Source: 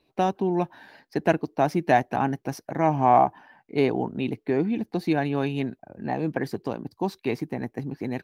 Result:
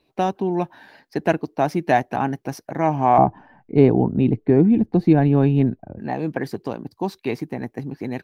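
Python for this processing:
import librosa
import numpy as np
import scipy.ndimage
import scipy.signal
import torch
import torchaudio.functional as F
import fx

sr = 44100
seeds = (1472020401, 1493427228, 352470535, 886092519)

y = fx.tilt_eq(x, sr, slope=-4.0, at=(3.18, 5.99))
y = F.gain(torch.from_numpy(y), 2.0).numpy()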